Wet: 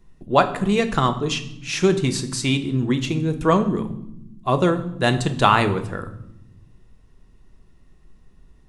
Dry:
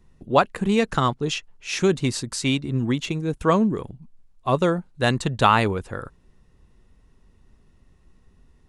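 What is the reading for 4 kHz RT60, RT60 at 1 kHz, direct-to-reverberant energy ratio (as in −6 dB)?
0.65 s, 0.70 s, 7.5 dB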